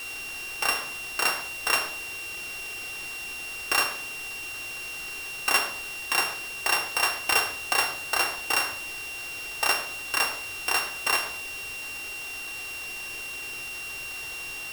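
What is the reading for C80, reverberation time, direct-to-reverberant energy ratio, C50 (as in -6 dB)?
14.5 dB, 0.70 s, 5.5 dB, 11.5 dB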